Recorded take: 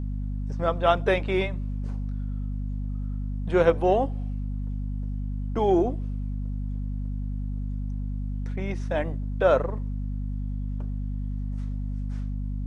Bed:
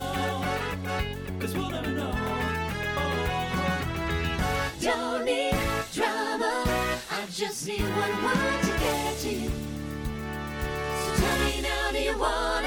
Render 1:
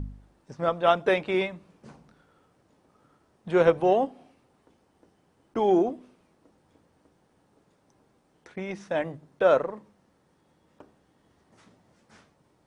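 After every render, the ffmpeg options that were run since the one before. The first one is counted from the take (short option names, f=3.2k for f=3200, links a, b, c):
-af "bandreject=f=50:t=h:w=4,bandreject=f=100:t=h:w=4,bandreject=f=150:t=h:w=4,bandreject=f=200:t=h:w=4,bandreject=f=250:t=h:w=4"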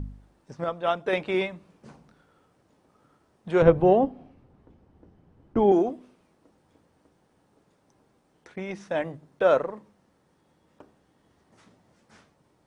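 -filter_complex "[0:a]asettb=1/sr,asplit=3[a][b][c];[a]atrim=end=3.624[d];[b]atrim=start=3.62:end=5.72,asetpts=PTS-STARTPTS,afade=t=in:d=0.004:c=qsin,afade=t=out:st=2.096:d=0.004:c=qsin,aemphasis=mode=reproduction:type=riaa[e];[c]atrim=start=5.716[f];[d][e]acrossfade=d=0.004:c1=hsin:c2=qsin[g];[g][f]acrossfade=d=0.004:c1=qsin:c2=hsin,asplit=3[h][i][j];[h]atrim=end=0.642[k];[i]atrim=start=0.638:end=1.132,asetpts=PTS-STARTPTS,volume=-4.5dB[l];[j]atrim=start=1.128[m];[k][l]acrossfade=d=0.004:c1=hsin:c2=hsin[n];[n][m]acrossfade=d=0.004:c1=hsin:c2=hsin"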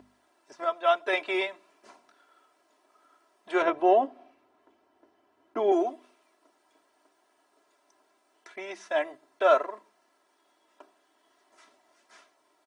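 -af "highpass=600,aecho=1:1:3:0.89"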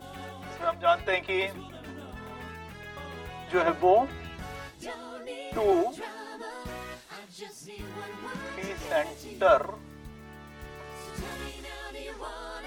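-filter_complex "[1:a]volume=-13dB[a];[0:a][a]amix=inputs=2:normalize=0"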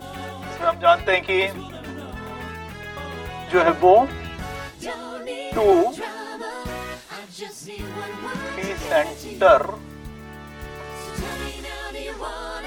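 -af "volume=8dB,alimiter=limit=-3dB:level=0:latency=1"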